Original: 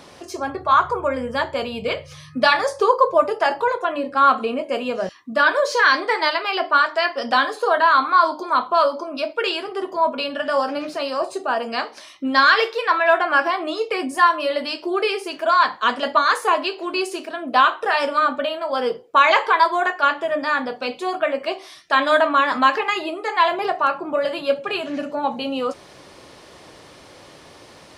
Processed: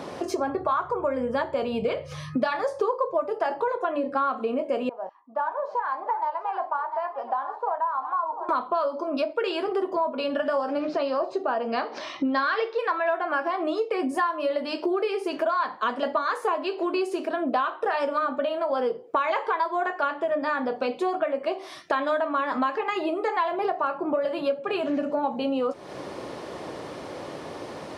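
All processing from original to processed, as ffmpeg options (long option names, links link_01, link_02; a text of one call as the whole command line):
ffmpeg -i in.wav -filter_complex "[0:a]asettb=1/sr,asplit=3[link_01][link_02][link_03];[link_01]atrim=end=4.894[link_04];[link_02]atrim=start=4.89:end=8.49,asetpts=PTS-STARTPTS,afade=type=in:duration=0.004:curve=qsin,afade=type=out:start_time=3.596:duration=0.004:curve=qsin,bandpass=frequency=880:width_type=q:width=7.8,aecho=1:1:697:0.2,atrim=end_sample=158760[link_05];[link_03]atrim=start=8.486[link_06];[link_04][link_05]acrossfade=duration=0.004:curve1=hsin:curve2=qsin[link_07];[link_07][link_06]acrossfade=duration=0.004:curve1=qsin:curve2=hsin,asettb=1/sr,asplit=3[link_08][link_09][link_10];[link_08]atrim=end=10.804[link_11];[link_09]atrim=start=10.8:end=12.79,asetpts=PTS-STARTPTS,afade=type=in:duration=0.004:curve=qsin,afade=type=out:start_time=1.986:duration=0.004:curve=qsin,lowpass=frequency=5700:width=0.5412,lowpass=frequency=5700:width=1.3066,acompressor=mode=upward:threshold=-31dB:ratio=2.5:attack=3.2:release=140:knee=2.83:detection=peak[link_12];[link_10]atrim=start=12.786[link_13];[link_11][link_12]acrossfade=duration=0.004:curve1=hsin:curve2=qsin[link_14];[link_14][link_13]acrossfade=duration=0.004:curve1=qsin:curve2=hsin,highpass=frequency=250:poles=1,tiltshelf=frequency=1400:gain=7.5,acompressor=threshold=-30dB:ratio=5,volume=5.5dB" out.wav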